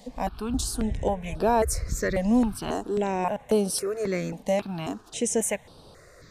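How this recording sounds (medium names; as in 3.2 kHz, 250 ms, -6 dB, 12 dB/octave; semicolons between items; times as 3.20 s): notches that jump at a steady rate 3.7 Hz 370–6900 Hz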